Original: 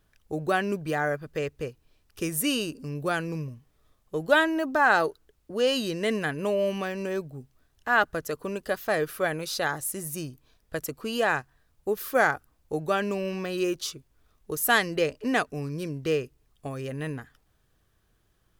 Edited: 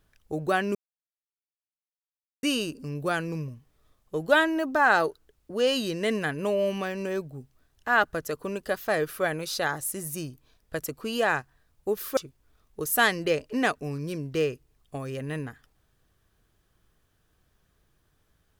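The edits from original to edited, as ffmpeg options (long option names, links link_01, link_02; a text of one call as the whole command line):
ffmpeg -i in.wav -filter_complex "[0:a]asplit=4[link_01][link_02][link_03][link_04];[link_01]atrim=end=0.75,asetpts=PTS-STARTPTS,afade=type=out:start_time=0.746:duration=0.004:curve=hsin[link_05];[link_02]atrim=start=0.75:end=2.43,asetpts=PTS-STARTPTS,volume=0[link_06];[link_03]atrim=start=2.43:end=12.172,asetpts=PTS-STARTPTS,afade=type=in:duration=0.004:curve=hsin[link_07];[link_04]atrim=start=13.878[link_08];[link_05][link_06][link_07]concat=n=3:v=0:a=1[link_09];[link_09][link_08]acrossfade=duration=0.004:curve1=hsin:curve2=hsin" out.wav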